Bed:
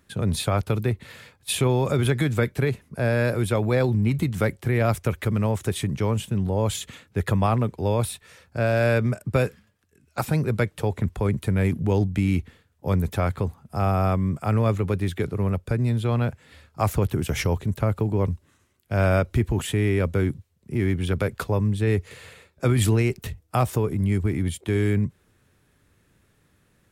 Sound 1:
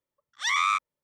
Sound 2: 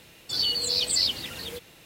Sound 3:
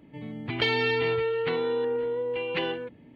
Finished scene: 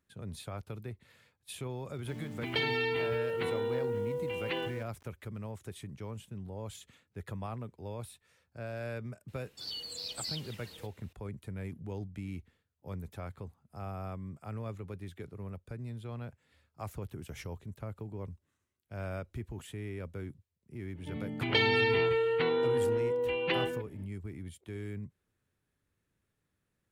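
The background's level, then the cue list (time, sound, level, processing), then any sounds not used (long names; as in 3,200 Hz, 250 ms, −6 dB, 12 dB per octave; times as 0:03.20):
bed −18.5 dB
0:01.94: mix in 3 −6 dB + centre clipping without the shift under −45.5 dBFS
0:09.28: mix in 2 −15 dB
0:20.93: mix in 3 −1.5 dB, fades 0.05 s
not used: 1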